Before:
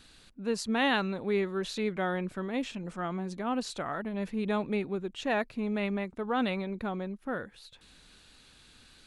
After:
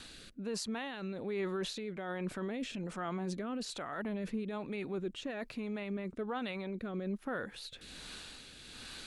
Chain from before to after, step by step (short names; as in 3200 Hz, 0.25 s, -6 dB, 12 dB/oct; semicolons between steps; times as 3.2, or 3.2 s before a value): low shelf 180 Hz -6.5 dB; reverse; compressor 6:1, threshold -39 dBFS, peak gain reduction 14.5 dB; reverse; limiter -39.5 dBFS, peak gain reduction 10.5 dB; rotary speaker horn 1.2 Hz; gain +11 dB